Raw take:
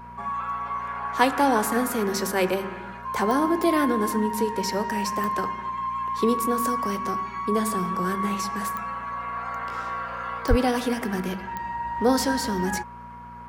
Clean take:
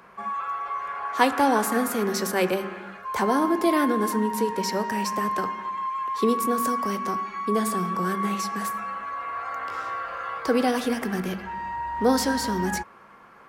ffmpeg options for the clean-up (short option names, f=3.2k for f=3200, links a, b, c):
-filter_complex "[0:a]adeclick=t=4,bandreject=f=59.4:t=h:w=4,bandreject=f=118.8:t=h:w=4,bandreject=f=178.2:t=h:w=4,bandreject=f=237.6:t=h:w=4,bandreject=f=960:w=30,asplit=3[a][b][c];[a]afade=t=out:st=10.49:d=0.02[d];[b]highpass=f=140:w=0.5412,highpass=f=140:w=1.3066,afade=t=in:st=10.49:d=0.02,afade=t=out:st=10.61:d=0.02[e];[c]afade=t=in:st=10.61:d=0.02[f];[d][e][f]amix=inputs=3:normalize=0"